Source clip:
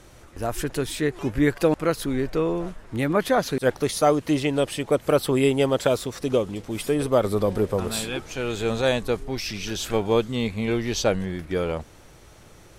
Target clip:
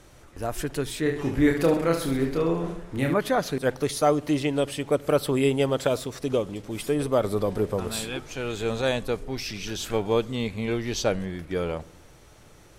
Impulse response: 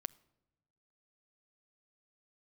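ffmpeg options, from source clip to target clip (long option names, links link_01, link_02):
-filter_complex "[0:a]asettb=1/sr,asplit=3[link_01][link_02][link_03];[link_01]atrim=end=1.034[link_04];[link_02]atrim=start=1.03:end=3.14,asetpts=PTS-STARTPTS,afade=type=in:duration=0.004:curve=qsin,afade=type=out:start_time=2.106:duration=0.004:curve=qsin,aecho=1:1:30|72|130.8|213.1|328.4:0.631|0.398|0.251|0.158|0.1,atrim=end_sample=93051[link_05];[link_03]atrim=start=3.136[link_06];[link_04][link_05]acrossfade=duration=0.004:curve1=hsin:curve2=qsin[link_07];[link_07][link_06]acrossfade=duration=0.004:curve1=qsin:curve2=hsin[link_08];[1:a]atrim=start_sample=2205[link_09];[link_08][link_09]afir=irnorm=-1:irlink=0"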